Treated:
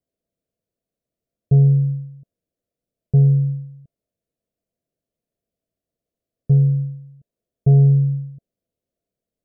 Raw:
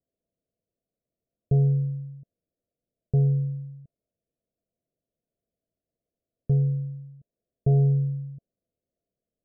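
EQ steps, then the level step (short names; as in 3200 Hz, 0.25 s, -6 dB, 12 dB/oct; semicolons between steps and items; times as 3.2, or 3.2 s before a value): dynamic EQ 150 Hz, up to +6 dB, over -33 dBFS, Q 0.89; +2.0 dB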